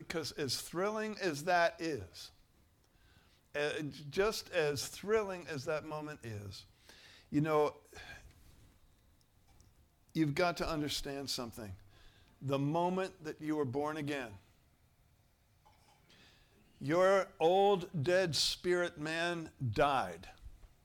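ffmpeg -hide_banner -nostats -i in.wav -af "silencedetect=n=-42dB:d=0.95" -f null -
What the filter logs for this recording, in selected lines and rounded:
silence_start: 2.26
silence_end: 3.55 | silence_duration: 1.29
silence_start: 8.14
silence_end: 10.15 | silence_duration: 2.01
silence_start: 14.28
silence_end: 16.81 | silence_duration: 2.53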